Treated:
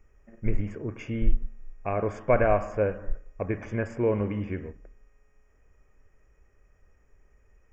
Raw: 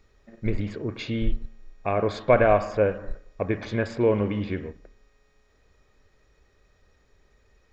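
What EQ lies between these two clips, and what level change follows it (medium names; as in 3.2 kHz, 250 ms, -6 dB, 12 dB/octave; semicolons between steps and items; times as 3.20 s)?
Butterworth band-stop 4 kHz, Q 1.3; bass shelf 62 Hz +9 dB; -4.0 dB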